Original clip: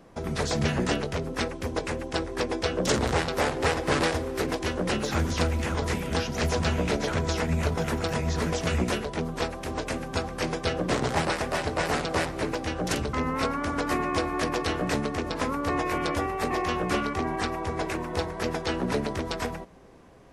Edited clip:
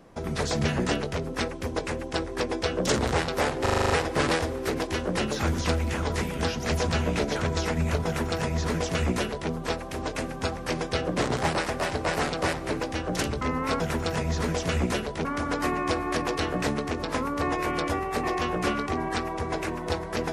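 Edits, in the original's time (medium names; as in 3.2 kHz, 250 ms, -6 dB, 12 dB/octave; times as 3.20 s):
3.62 s: stutter 0.04 s, 8 plays
7.78–9.23 s: copy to 13.52 s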